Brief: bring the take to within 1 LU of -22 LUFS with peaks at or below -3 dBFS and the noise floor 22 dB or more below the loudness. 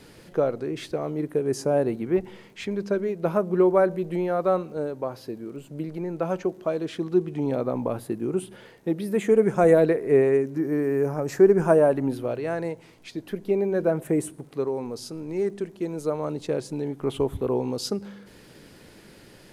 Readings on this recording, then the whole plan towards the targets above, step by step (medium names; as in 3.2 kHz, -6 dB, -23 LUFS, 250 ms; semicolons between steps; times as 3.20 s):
tick rate 37 per s; loudness -25.0 LUFS; peak level -6.5 dBFS; loudness target -22.0 LUFS
-> de-click; trim +3 dB